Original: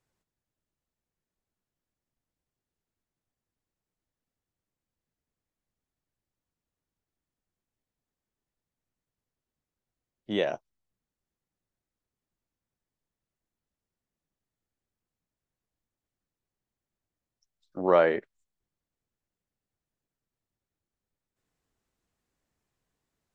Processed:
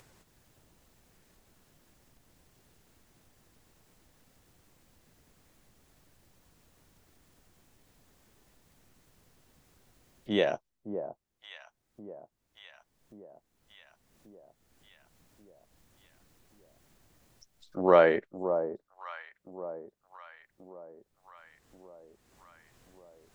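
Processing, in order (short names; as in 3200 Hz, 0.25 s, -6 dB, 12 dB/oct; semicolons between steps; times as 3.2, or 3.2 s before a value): echo with dull and thin repeats by turns 0.566 s, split 980 Hz, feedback 56%, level -9 dB; upward compressor, threshold -45 dBFS; gain +1 dB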